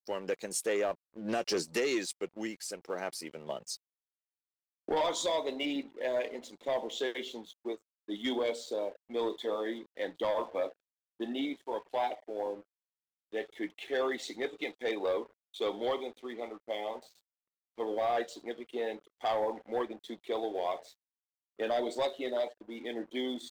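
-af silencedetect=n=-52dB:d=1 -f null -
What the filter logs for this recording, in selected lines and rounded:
silence_start: 3.77
silence_end: 4.88 | silence_duration: 1.12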